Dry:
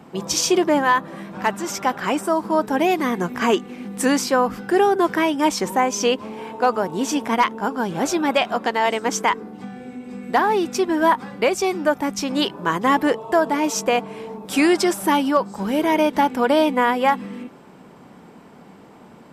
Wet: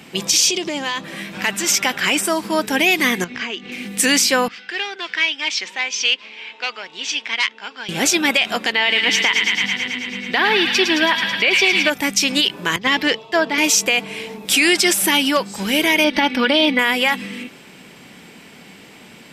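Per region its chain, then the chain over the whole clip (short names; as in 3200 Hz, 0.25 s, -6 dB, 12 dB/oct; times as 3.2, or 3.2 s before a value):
0.48–1.04 bell 1700 Hz -8 dB 0.72 oct + compressor 12:1, threshold -21 dBFS + synth low-pass 6500 Hz, resonance Q 1.6
3.24–3.72 LPF 5400 Hz 24 dB/oct + compressor 4:1, threshold -31 dBFS
4.48–7.89 band-pass 4200 Hz, Q 0.64 + air absorption 180 m + core saturation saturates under 1600 Hz
8.72–11.9 resonant high shelf 5200 Hz -12 dB, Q 1.5 + thin delay 0.109 s, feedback 77%, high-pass 1600 Hz, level -5.5 dB
12.76–13.58 resonant high shelf 6800 Hz -11.5 dB, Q 1.5 + three-band expander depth 100%
16.04–16.79 polynomial smoothing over 15 samples + comb 3.5 ms, depth 70%
whole clip: resonant high shelf 1600 Hz +12.5 dB, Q 1.5; maximiser +5.5 dB; gain -4.5 dB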